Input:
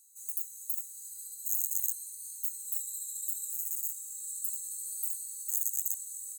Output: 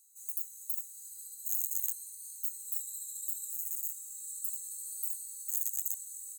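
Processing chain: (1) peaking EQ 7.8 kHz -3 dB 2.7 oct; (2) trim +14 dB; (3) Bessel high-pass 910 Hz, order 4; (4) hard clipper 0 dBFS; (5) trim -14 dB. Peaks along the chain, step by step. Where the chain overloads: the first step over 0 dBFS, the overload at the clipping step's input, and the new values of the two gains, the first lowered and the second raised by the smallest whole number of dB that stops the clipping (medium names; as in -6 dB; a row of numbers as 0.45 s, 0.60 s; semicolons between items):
-10.5 dBFS, +3.5 dBFS, +4.0 dBFS, 0.0 dBFS, -14.0 dBFS; step 2, 4.0 dB; step 2 +10 dB, step 5 -10 dB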